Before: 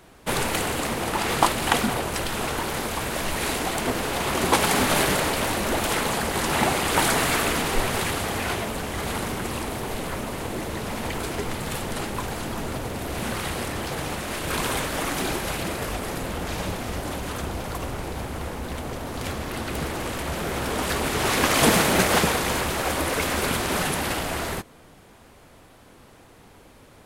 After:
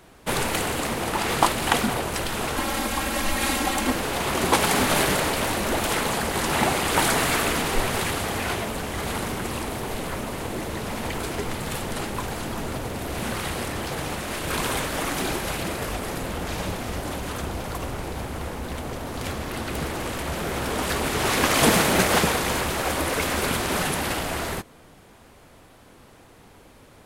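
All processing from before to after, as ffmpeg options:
-filter_complex "[0:a]asettb=1/sr,asplit=3[s0][s1][s2];[s0]atrim=end=2.564[s3];[s1]atrim=start=2.56:end=3.95,asetpts=PTS-STARTPTS,afade=t=in:d=0.004:c=qsin,afade=t=out:st=1.386:d=0.004:c=qsin,bandreject=f=500:w=9.4,aecho=1:1:3.7:0.82,atrim=end_sample=61299[s4];[s2]atrim=start=3.946[s5];[s3][s4]acrossfade=d=0.004:c1=hsin:c2=qsin[s6];[s6][s5]acrossfade=d=0.004:c1=qsin:c2=hsin"

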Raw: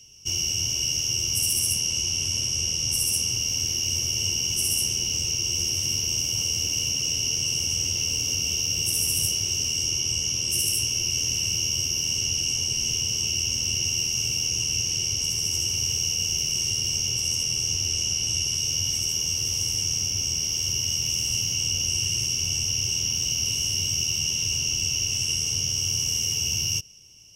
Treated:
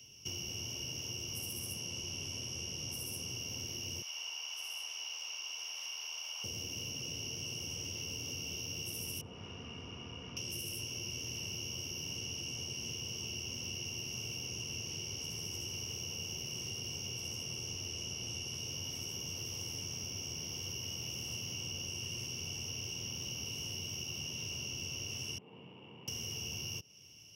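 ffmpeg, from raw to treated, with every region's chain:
-filter_complex "[0:a]asettb=1/sr,asplit=3[s0][s1][s2];[s0]atrim=end=4.024[s3];[s1]atrim=start=4.02:end=6.44,asetpts=PTS-STARTPTS,afade=t=in:d=0.004:c=qsin,afade=t=out:st=2.416:d=0.004:c=qsin,highpass=f=840:w=0.5412,highpass=f=840:w=1.3066,acrossover=split=5200[s4][s5];[s5]acompressor=threshold=0.0141:ratio=4:attack=1:release=60[s6];[s4][s6]amix=inputs=2:normalize=0[s7];[s2]atrim=start=6.436[s8];[s3][s7]acrossfade=d=0.004:c1=hsin:c2=qsin[s9];[s9][s8]acrossfade=d=0.004:c1=qsin:c2=hsin,asettb=1/sr,asplit=3[s10][s11][s12];[s10]atrim=end=9.214[s13];[s11]atrim=start=9.21:end=10.37,asetpts=PTS-STARTPTS,afade=t=in:d=0.004:c=qsin,afade=t=out:st=1.156:d=0.004:c=qsin,lowpass=f=1200:t=q:w=1.6,aeval=exprs='(tanh(17.8*val(0)+0.45)-tanh(0.45))/17.8':c=same,aecho=1:1:4.2:0.37,atrim=end_sample=51156[s14];[s12]atrim=start=10.366[s15];[s13][s14]acrossfade=d=0.004:c1=hsin:c2=qsin[s16];[s16][s15]acrossfade=d=0.004:c1=qsin:c2=hsin,asettb=1/sr,asplit=3[s17][s18][s19];[s17]atrim=end=25.384[s20];[s18]atrim=start=25.38:end=26.08,asetpts=PTS-STARTPTS,afade=t=in:d=0.004:c=qsin,afade=t=out:st=0.696:d=0.004:c=qsin,adynamicsmooth=sensitivity=0.5:basefreq=640,highpass=f=220:w=0.5412,highpass=f=220:w=1.3066,equalizer=f=250:t=q:w=4:g=-8,equalizer=f=370:t=q:w=4:g=-6,equalizer=f=630:t=q:w=4:g=-5,equalizer=f=930:t=q:w=4:g=8,equalizer=f=1500:t=q:w=4:g=-4,equalizer=f=2600:t=q:w=4:g=3,lowpass=f=3400:w=0.5412,lowpass=f=3400:w=1.3066[s21];[s19]atrim=start=26.076[s22];[s20][s21]acrossfade=d=0.004:c1=hsin:c2=qsin[s23];[s23][s22]acrossfade=d=0.004:c1=qsin:c2=hsin,highpass=100,equalizer=f=7700:t=o:w=0.87:g=-13.5,acrossover=split=220|1300[s24][s25][s26];[s24]acompressor=threshold=0.00355:ratio=4[s27];[s25]acompressor=threshold=0.00251:ratio=4[s28];[s26]acompressor=threshold=0.00794:ratio=4[s29];[s27][s28][s29]amix=inputs=3:normalize=0"

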